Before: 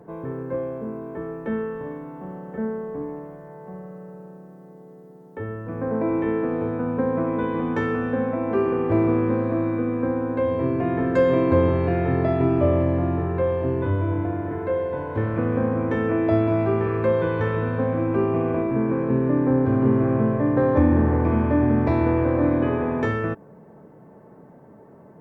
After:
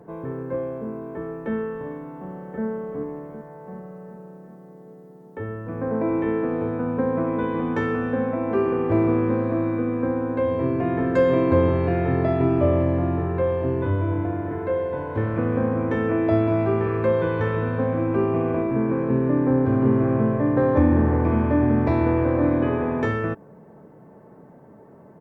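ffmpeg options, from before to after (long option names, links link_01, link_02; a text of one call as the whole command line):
ffmpeg -i in.wav -filter_complex "[0:a]asplit=2[link_01][link_02];[link_02]afade=type=in:start_time=2:duration=0.01,afade=type=out:start_time=2.65:duration=0.01,aecho=0:1:380|760|1140|1520|1900|2280|2660|3040:0.298538|0.19405|0.126132|0.0819861|0.0532909|0.0346391|0.0225154|0.014635[link_03];[link_01][link_03]amix=inputs=2:normalize=0" out.wav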